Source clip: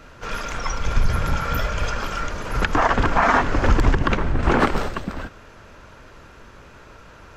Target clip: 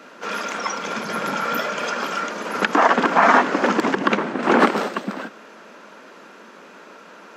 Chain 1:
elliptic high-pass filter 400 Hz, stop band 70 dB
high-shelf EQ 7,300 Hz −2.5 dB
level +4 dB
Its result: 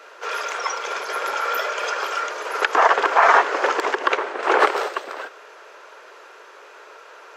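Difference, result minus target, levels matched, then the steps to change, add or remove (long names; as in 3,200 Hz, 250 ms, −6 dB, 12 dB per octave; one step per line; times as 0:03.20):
250 Hz band −13.5 dB
change: elliptic high-pass filter 200 Hz, stop band 70 dB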